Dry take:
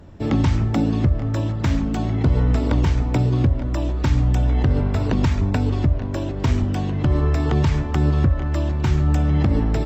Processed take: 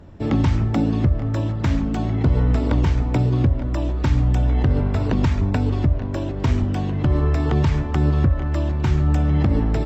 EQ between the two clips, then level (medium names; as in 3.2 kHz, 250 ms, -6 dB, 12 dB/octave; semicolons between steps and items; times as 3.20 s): treble shelf 5 kHz -5.5 dB; 0.0 dB